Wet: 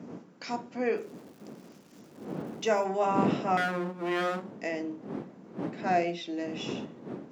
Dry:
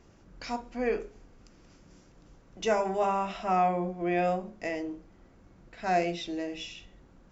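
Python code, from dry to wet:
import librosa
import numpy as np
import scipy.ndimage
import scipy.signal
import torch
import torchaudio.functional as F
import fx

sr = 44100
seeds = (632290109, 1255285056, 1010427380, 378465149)

y = fx.lower_of_two(x, sr, delay_ms=0.54, at=(3.57, 4.52))
y = fx.dmg_wind(y, sr, seeds[0], corner_hz=270.0, level_db=-36.0)
y = scipy.signal.sosfilt(scipy.signal.butter(4, 170.0, 'highpass', fs=sr, output='sos'), y)
y = fx.dmg_crackle(y, sr, seeds[1], per_s=410.0, level_db=-48.0, at=(0.96, 2.84), fade=0.02)
y = fx.high_shelf(y, sr, hz=6400.0, db=-9.0, at=(5.81, 6.38))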